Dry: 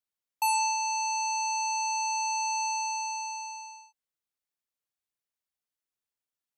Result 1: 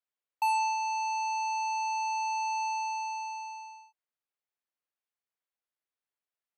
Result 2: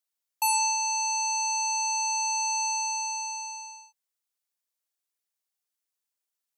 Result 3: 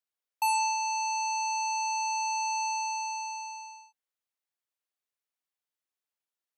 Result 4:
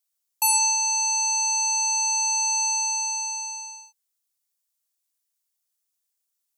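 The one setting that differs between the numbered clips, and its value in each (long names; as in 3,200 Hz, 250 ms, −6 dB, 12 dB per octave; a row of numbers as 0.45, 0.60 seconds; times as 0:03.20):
bass and treble, treble: −13, +6, −3, +14 decibels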